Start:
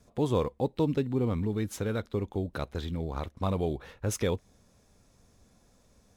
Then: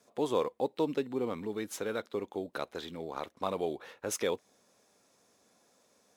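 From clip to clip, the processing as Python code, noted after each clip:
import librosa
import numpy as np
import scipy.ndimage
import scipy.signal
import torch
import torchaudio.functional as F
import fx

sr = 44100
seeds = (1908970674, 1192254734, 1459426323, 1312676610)

y = scipy.signal.sosfilt(scipy.signal.butter(2, 350.0, 'highpass', fs=sr, output='sos'), x)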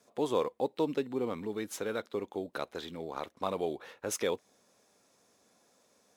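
y = x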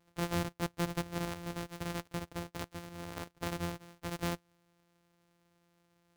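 y = np.r_[np.sort(x[:len(x) // 256 * 256].reshape(-1, 256), axis=1).ravel(), x[len(x) // 256 * 256:]]
y = y * librosa.db_to_amplitude(-4.0)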